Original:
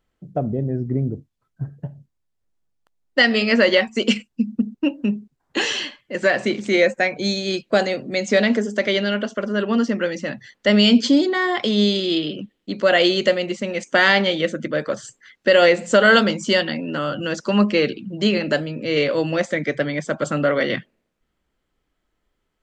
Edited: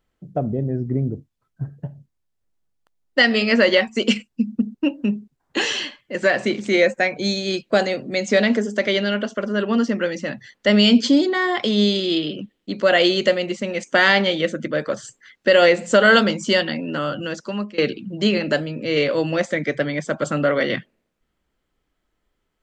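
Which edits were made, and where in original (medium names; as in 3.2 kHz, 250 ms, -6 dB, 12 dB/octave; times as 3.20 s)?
17.07–17.78 s: fade out, to -21.5 dB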